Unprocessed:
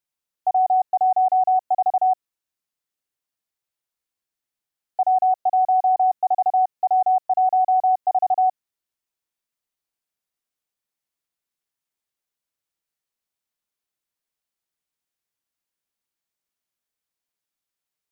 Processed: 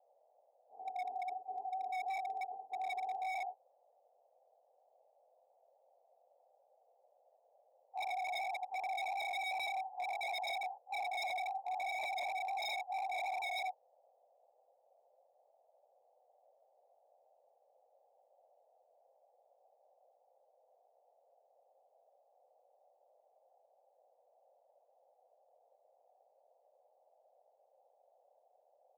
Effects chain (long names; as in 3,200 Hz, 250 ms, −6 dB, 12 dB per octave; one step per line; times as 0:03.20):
random phases in long frames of 50 ms
drawn EQ curve 420 Hz 0 dB, 610 Hz −19 dB, 920 Hz −2 dB, 1,400 Hz −20 dB
noise gate −36 dBFS, range −7 dB
time stretch by phase vocoder 1.6×
band-pass filter sweep 420 Hz → 890 Hz, 0:02.44–0:04.92
on a send: single-tap delay 82 ms −5.5 dB
on the sum: noise in a band 500–800 Hz −73 dBFS
wave folding −36 dBFS
level +2 dB